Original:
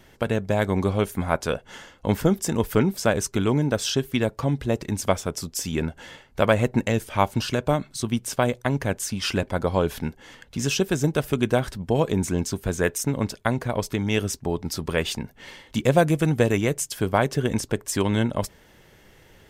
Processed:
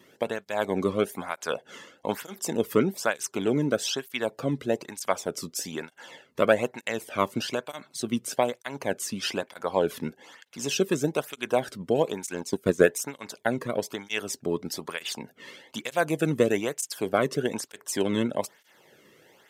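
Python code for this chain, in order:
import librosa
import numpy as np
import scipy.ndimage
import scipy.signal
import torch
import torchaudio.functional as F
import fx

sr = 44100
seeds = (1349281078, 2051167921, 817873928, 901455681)

y = scipy.signal.sosfilt(scipy.signal.butter(2, 130.0, 'highpass', fs=sr, output='sos'), x)
y = fx.transient(y, sr, attack_db=9, sustain_db=-8, at=(12.28, 12.85), fade=0.02)
y = fx.flanger_cancel(y, sr, hz=1.1, depth_ms=1.4)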